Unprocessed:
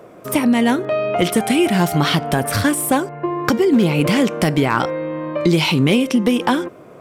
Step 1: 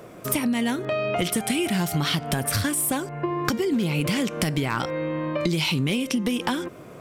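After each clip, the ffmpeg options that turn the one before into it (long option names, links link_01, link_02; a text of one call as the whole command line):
ffmpeg -i in.wav -af "equalizer=frequency=600:width=0.33:gain=-8.5,acompressor=threshold=-28dB:ratio=4,volume=5.5dB" out.wav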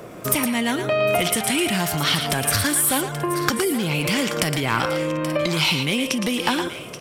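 ffmpeg -i in.wav -filter_complex "[0:a]acrossover=split=550[link_01][link_02];[link_01]alimiter=level_in=1dB:limit=-24dB:level=0:latency=1,volume=-1dB[link_03];[link_02]aecho=1:1:114|829|883:0.447|0.251|0.133[link_04];[link_03][link_04]amix=inputs=2:normalize=0,volume=5dB" out.wav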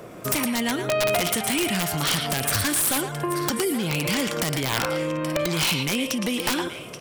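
ffmpeg -i in.wav -af "aeval=exprs='(mod(3.98*val(0)+1,2)-1)/3.98':channel_layout=same,volume=-2.5dB" out.wav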